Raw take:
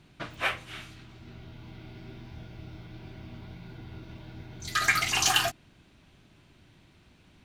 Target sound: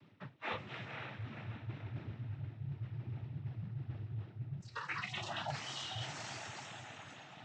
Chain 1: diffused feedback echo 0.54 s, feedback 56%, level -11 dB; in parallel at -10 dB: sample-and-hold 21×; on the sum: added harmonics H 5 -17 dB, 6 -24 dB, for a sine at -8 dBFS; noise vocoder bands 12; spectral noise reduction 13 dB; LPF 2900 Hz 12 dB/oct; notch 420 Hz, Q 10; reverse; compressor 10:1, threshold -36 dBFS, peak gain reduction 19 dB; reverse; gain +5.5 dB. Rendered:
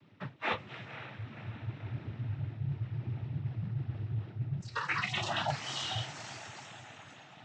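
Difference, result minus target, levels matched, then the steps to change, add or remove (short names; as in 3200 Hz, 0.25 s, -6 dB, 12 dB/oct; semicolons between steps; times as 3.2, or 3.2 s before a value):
compressor: peak gain reduction -7.5 dB
change: compressor 10:1, threshold -44.5 dBFS, peak gain reduction 26.5 dB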